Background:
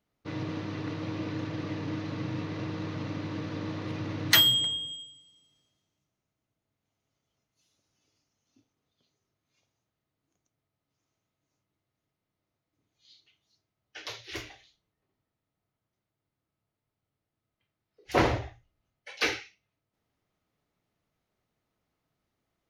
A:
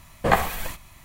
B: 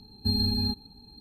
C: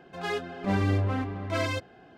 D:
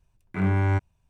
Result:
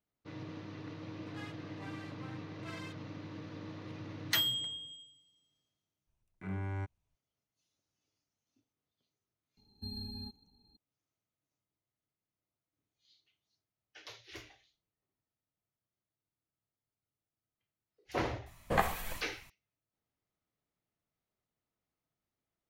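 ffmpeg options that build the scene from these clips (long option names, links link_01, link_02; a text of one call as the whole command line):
ffmpeg -i bed.wav -i cue0.wav -i cue1.wav -i cue2.wav -i cue3.wav -filter_complex "[0:a]volume=-10.5dB[link_01];[3:a]highpass=1000,atrim=end=2.17,asetpts=PTS-STARTPTS,volume=-15dB,afade=type=in:duration=0.004:curve=hsin,afade=type=out:start_time=2.166:duration=0.004:curve=hsin,adelay=1130[link_02];[4:a]atrim=end=1.09,asetpts=PTS-STARTPTS,volume=-15.5dB,afade=type=in:duration=0.004:curve=hsin,afade=type=out:start_time=1.086:duration=0.004:curve=hsin,adelay=6070[link_03];[2:a]atrim=end=1.2,asetpts=PTS-STARTPTS,volume=-17dB,afade=type=in:duration=0.004:curve=hsin,afade=type=out:start_time=1.196:duration=0.004:curve=hsin,adelay=9570[link_04];[1:a]atrim=end=1.04,asetpts=PTS-STARTPTS,volume=-10dB,afade=type=in:duration=0.004:curve=hsin,afade=type=out:start_time=1.036:duration=0.004:curve=hsin,adelay=18460[link_05];[link_01][link_02][link_03][link_04][link_05]amix=inputs=5:normalize=0" out.wav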